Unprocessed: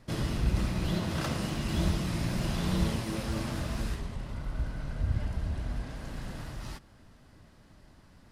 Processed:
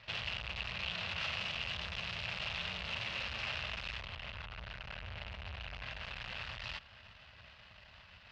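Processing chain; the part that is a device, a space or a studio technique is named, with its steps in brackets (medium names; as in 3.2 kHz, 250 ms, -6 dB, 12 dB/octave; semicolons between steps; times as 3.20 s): scooped metal amplifier (valve stage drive 45 dB, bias 0.75; cabinet simulation 86–4000 Hz, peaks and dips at 140 Hz -6 dB, 610 Hz +4 dB, 2.7 kHz +9 dB; amplifier tone stack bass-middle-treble 10-0-10); trim +15.5 dB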